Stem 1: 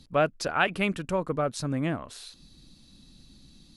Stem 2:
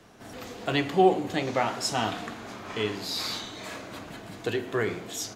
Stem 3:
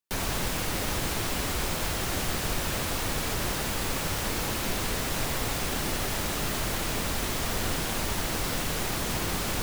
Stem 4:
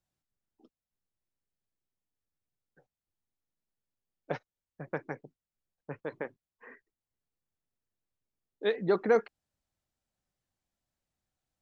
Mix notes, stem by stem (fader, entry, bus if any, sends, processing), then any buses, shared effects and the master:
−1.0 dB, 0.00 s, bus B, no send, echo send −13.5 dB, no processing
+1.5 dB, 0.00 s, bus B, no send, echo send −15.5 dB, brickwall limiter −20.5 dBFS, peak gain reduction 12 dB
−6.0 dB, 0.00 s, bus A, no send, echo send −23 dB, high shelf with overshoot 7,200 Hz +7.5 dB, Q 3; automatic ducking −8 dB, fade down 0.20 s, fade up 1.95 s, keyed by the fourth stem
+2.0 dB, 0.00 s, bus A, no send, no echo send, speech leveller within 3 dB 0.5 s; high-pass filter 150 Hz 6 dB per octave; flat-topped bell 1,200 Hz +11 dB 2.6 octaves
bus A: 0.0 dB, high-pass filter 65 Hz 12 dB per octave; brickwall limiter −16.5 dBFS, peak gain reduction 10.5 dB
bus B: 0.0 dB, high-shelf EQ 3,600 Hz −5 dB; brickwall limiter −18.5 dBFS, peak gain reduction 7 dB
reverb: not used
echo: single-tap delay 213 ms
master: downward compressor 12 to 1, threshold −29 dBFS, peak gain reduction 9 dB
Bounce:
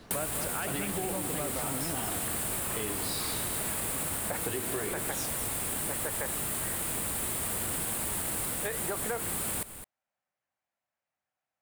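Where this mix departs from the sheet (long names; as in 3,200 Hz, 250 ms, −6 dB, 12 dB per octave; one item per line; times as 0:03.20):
stem 3 −6.0 dB → +4.5 dB
stem 4 +2.0 dB → −4.0 dB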